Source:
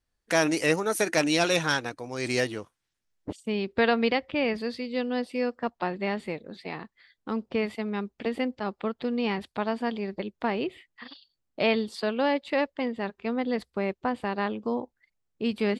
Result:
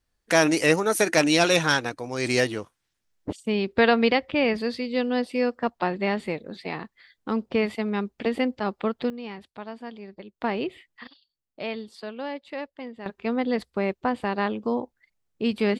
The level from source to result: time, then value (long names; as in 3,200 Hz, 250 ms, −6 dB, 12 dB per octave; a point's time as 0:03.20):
+4 dB
from 0:09.10 −9 dB
from 0:10.42 +1 dB
from 0:11.07 −8 dB
from 0:13.06 +3 dB